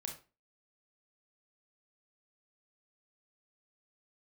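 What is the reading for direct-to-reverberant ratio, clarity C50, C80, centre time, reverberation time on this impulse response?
2.0 dB, 8.0 dB, 14.0 dB, 20 ms, 0.30 s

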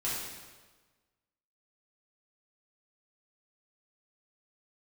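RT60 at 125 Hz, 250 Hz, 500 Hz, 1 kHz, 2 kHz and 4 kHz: 1.5, 1.3, 1.4, 1.3, 1.2, 1.1 seconds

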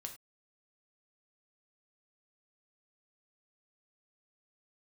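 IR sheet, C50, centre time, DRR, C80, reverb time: 10.5 dB, 12 ms, 4.0 dB, 15.5 dB, non-exponential decay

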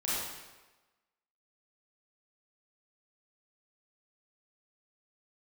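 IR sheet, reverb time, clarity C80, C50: 1.2 s, 0.0 dB, −3.5 dB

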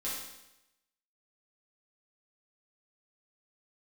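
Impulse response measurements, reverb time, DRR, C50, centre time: 0.90 s, −8.5 dB, 1.0 dB, 62 ms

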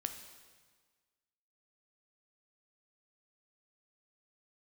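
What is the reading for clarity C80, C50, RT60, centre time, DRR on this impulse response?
10.0 dB, 8.5 dB, 1.5 s, 22 ms, 6.5 dB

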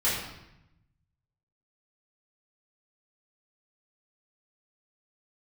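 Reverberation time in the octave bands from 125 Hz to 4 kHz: 1.6, 1.2, 0.85, 0.85, 0.85, 0.75 seconds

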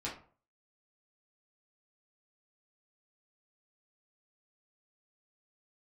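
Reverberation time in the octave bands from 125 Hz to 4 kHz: 0.50, 0.45, 0.45, 0.45, 0.35, 0.25 seconds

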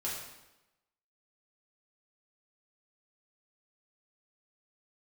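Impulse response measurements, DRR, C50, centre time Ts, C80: −7.0 dB, 2.0 dB, 60 ms, 4.5 dB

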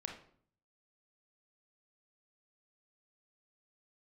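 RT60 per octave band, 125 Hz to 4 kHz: 0.85, 0.75, 0.60, 0.55, 0.45, 0.40 seconds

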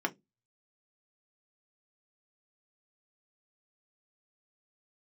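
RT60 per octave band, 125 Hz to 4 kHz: 0.30, 0.30, 0.20, 0.10, 0.15, 0.15 seconds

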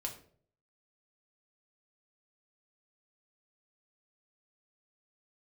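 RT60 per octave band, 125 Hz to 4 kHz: 0.75, 0.60, 0.60, 0.45, 0.40, 0.35 seconds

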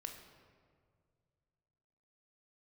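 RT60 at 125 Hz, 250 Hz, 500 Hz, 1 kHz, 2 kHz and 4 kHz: 2.9, 2.3, 2.2, 1.8, 1.5, 1.1 seconds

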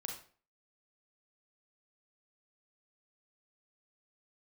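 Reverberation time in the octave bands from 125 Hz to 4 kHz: 0.40, 0.45, 0.45, 0.40, 0.40, 0.35 seconds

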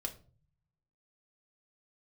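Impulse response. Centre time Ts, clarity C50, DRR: 8 ms, 14.0 dB, 3.0 dB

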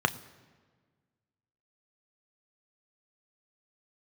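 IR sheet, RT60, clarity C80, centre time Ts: 1.5 s, 19.5 dB, 5 ms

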